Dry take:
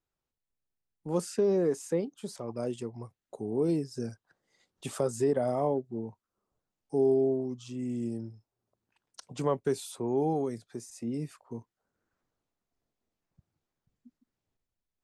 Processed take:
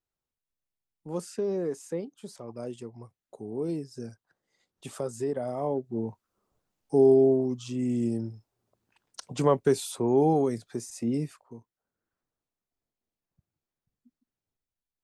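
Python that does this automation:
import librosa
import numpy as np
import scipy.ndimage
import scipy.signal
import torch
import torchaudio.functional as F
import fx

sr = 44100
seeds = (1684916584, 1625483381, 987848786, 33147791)

y = fx.gain(x, sr, db=fx.line((5.55, -3.5), (6.04, 6.0), (11.16, 6.0), (11.57, -6.0)))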